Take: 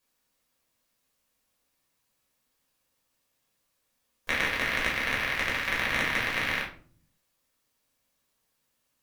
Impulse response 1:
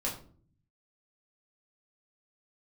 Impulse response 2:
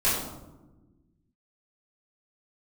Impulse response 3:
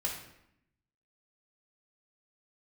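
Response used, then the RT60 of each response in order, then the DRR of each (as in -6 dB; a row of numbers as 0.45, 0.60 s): 1; 0.50, 1.2, 0.80 s; -4.0, -14.0, -3.5 dB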